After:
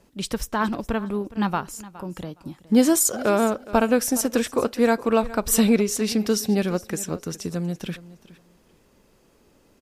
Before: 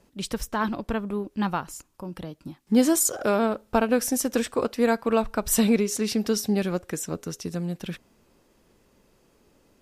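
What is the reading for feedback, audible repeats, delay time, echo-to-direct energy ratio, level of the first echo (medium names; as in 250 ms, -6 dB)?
17%, 2, 415 ms, -18.0 dB, -18.0 dB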